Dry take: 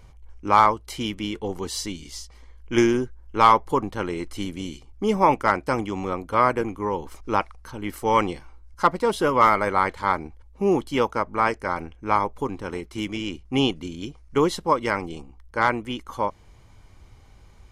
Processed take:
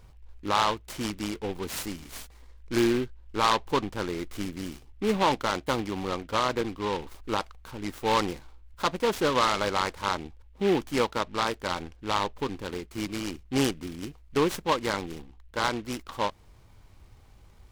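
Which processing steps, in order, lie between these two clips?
brickwall limiter −10 dBFS, peak gain reduction 5 dB
short delay modulated by noise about 2,200 Hz, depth 0.069 ms
level −3.5 dB

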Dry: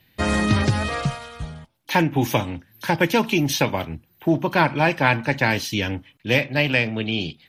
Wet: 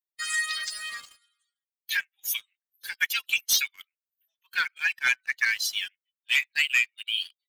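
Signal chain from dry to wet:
spectral dynamics exaggerated over time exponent 2
Butterworth high-pass 1,500 Hz 48 dB per octave
high-shelf EQ 5,000 Hz +6.5 dB
leveller curve on the samples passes 2
0:01.97–0:02.41: multiband upward and downward expander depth 40%
level −3.5 dB

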